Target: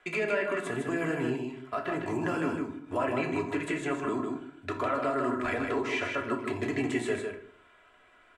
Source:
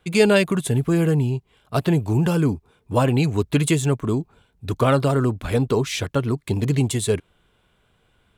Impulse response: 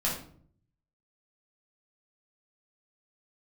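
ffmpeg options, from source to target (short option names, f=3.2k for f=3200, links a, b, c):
-filter_complex "[0:a]acrossover=split=210 7000:gain=0.224 1 0.0794[a][b][c];[a][b][c]amix=inputs=3:normalize=0,aecho=1:1:3:0.56,acrossover=split=2800[d][e];[e]acompressor=threshold=-41dB:ratio=4:attack=1:release=60[f];[d][f]amix=inputs=2:normalize=0,firequalizer=gain_entry='entry(200,0);entry(390,5);entry(830,7);entry(1800,13);entry(3600,0);entry(7700,9)':delay=0.05:min_phase=1,alimiter=limit=-17dB:level=0:latency=1:release=340,aecho=1:1:155:0.562,asplit=2[g][h];[1:a]atrim=start_sample=2205,afade=t=out:st=0.42:d=0.01,atrim=end_sample=18963[i];[h][i]afir=irnorm=-1:irlink=0,volume=-7.5dB[j];[g][j]amix=inputs=2:normalize=0,volume=-8.5dB"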